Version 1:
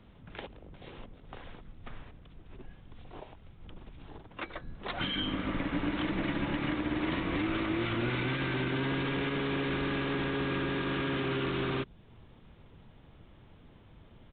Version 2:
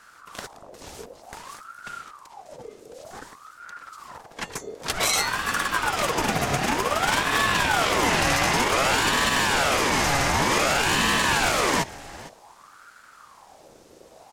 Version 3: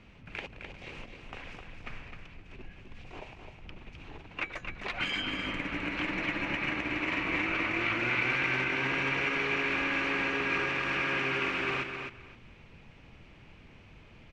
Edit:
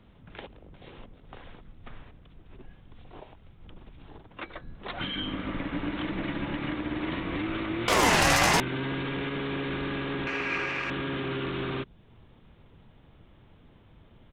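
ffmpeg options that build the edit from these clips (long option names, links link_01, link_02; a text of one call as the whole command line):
ffmpeg -i take0.wav -i take1.wav -i take2.wav -filter_complex "[0:a]asplit=3[link_01][link_02][link_03];[link_01]atrim=end=7.882[link_04];[1:a]atrim=start=7.878:end=8.602[link_05];[link_02]atrim=start=8.598:end=10.272[link_06];[2:a]atrim=start=10.268:end=10.902[link_07];[link_03]atrim=start=10.898[link_08];[link_04][link_05]acrossfade=duration=0.004:curve1=hsin:curve2=hsin[link_09];[link_09][link_06]acrossfade=duration=0.004:curve1=hsin:curve2=hsin[link_10];[link_10][link_07]acrossfade=duration=0.004:curve1=hsin:curve2=hsin[link_11];[link_11][link_08]acrossfade=duration=0.004:curve1=hsin:curve2=hsin" out.wav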